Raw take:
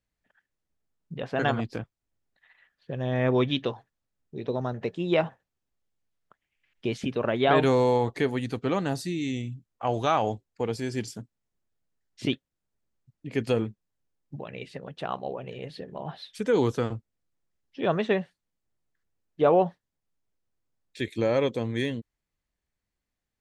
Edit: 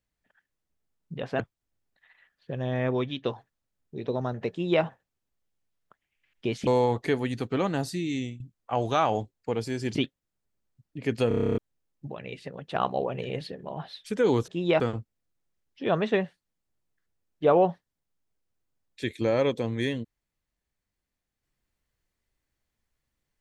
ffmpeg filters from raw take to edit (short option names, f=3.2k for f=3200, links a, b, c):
-filter_complex "[0:a]asplit=20[a][b][c][d][e][f][g][h][i][j][k][l][m][n][o][p][q][r][s][t];[a]atrim=end=1.402[u];[b]atrim=start=1.798:end=3.65,asetpts=PTS-STARTPTS,afade=t=out:st=1.152:d=0.7:silence=0.334965[v];[c]atrim=start=3.65:end=7.072,asetpts=PTS-STARTPTS,afade=t=in:d=0.004:c=hsin:silence=0.334965[w];[d]atrim=start=7.788:end=9.52,asetpts=PTS-STARTPTS,afade=t=out:st=1.462:d=0.27:c=qsin:silence=0.177828[x];[e]atrim=start=9.52:end=11.072,asetpts=PTS-STARTPTS,afade=t=in:d=0.004:c=hsin:silence=0.177828[y];[f]atrim=start=12.238:end=13.602[z];[g]atrim=start=13.568:end=13.602[aa];[h]atrim=start=13.568:end=13.602[ab];[i]atrim=start=13.568:end=13.602[ac];[j]atrim=start=13.568:end=13.602[ad];[k]atrim=start=13.568:end=13.602[ae];[l]atrim=start=13.568:end=13.602[af];[m]atrim=start=13.568:end=13.602[ag];[n]atrim=start=13.568:end=13.602[ah];[o]atrim=start=13.568:end=13.602[ai];[p]atrim=start=13.868:end=15.042[aj];[q]atrim=start=15.038:end=15.762,asetpts=PTS-STARTPTS,volume=5.5dB[ak];[r]atrim=start=15.758:end=16.772[al];[s]atrim=start=4.908:end=5.232[am];[t]atrim=start=16.768[an];[v][w]concat=n=2:v=0:a=1[ao];[u][ao]acrossfade=d=0.004:c1=hsin:c2=hsin[ap];[x][y]concat=n=2:v=0:a=1[aq];[ap][aq]acrossfade=d=0.004:c1=hsin:c2=hsin[ar];[ar][z]acrossfade=d=0.004:c1=hsin:c2=hsin[as];[as][aa]acrossfade=d=0.004:c1=hsin:c2=hsin[at];[at][ab]acrossfade=d=0.004:c1=hsin:c2=hsin[au];[au][ac]acrossfade=d=0.004:c1=hsin:c2=hsin[av];[av][ad]acrossfade=d=0.004:c1=hsin:c2=hsin[aw];[aw][ae]acrossfade=d=0.004:c1=hsin:c2=hsin[ax];[ax][af]acrossfade=d=0.004:c1=hsin:c2=hsin[ay];[ay][ag]acrossfade=d=0.004:c1=hsin:c2=hsin[az];[az][ah]acrossfade=d=0.004:c1=hsin:c2=hsin[ba];[ba][ai]acrossfade=d=0.004:c1=hsin:c2=hsin[bb];[bb][aj]acrossfade=d=0.004:c1=hsin:c2=hsin[bc];[bc][ak]acrossfade=d=0.004:c1=hsin:c2=hsin[bd];[bd][al]acrossfade=d=0.004:c1=hsin:c2=hsin[be];[be][am]acrossfade=d=0.004:c1=hsin:c2=hsin[bf];[bf][an]acrossfade=d=0.004:c1=hsin:c2=hsin"